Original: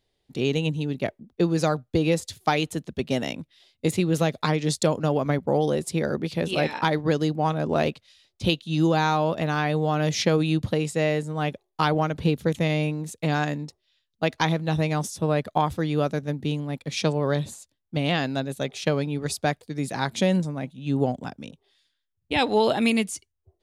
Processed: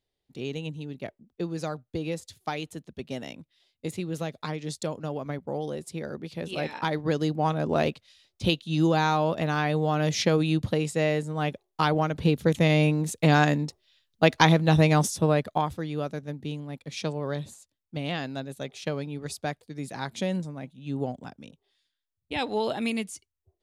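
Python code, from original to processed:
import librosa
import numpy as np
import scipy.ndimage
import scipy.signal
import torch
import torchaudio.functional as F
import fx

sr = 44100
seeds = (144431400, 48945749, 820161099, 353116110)

y = fx.gain(x, sr, db=fx.line((6.22, -9.5), (7.39, -1.5), (12.09, -1.5), (12.99, 4.5), (15.06, 4.5), (15.84, -7.0)))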